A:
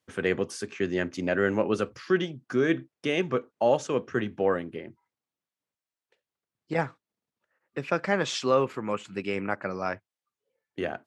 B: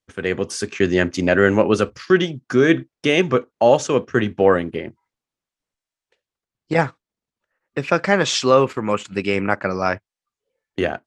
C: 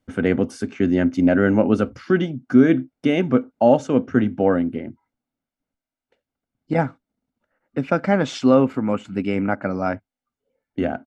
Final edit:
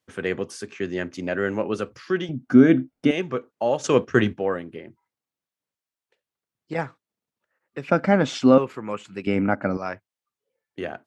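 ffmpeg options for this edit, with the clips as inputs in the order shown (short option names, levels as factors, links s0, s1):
-filter_complex "[2:a]asplit=3[s0][s1][s2];[0:a]asplit=5[s3][s4][s5][s6][s7];[s3]atrim=end=2.292[s8];[s0]atrim=start=2.288:end=3.112[s9];[s4]atrim=start=3.108:end=3.842[s10];[1:a]atrim=start=3.838:end=4.342[s11];[s5]atrim=start=4.338:end=7.882[s12];[s1]atrim=start=7.878:end=8.582[s13];[s6]atrim=start=8.578:end=9.272[s14];[s2]atrim=start=9.268:end=9.772[s15];[s7]atrim=start=9.768[s16];[s8][s9]acrossfade=d=0.004:c1=hsin:c2=hsin[s17];[s17][s10]acrossfade=d=0.004:c1=hsin:c2=hsin[s18];[s18][s11]acrossfade=d=0.004:c1=hsin:c2=hsin[s19];[s19][s12]acrossfade=d=0.004:c1=hsin:c2=hsin[s20];[s20][s13]acrossfade=d=0.004:c1=hsin:c2=hsin[s21];[s21][s14]acrossfade=d=0.004:c1=hsin:c2=hsin[s22];[s22][s15]acrossfade=d=0.004:c1=hsin:c2=hsin[s23];[s23][s16]acrossfade=d=0.004:c1=hsin:c2=hsin"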